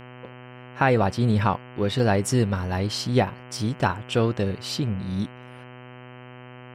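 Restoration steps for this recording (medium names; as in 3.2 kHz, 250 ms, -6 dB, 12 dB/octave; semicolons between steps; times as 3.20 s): de-hum 124.7 Hz, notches 25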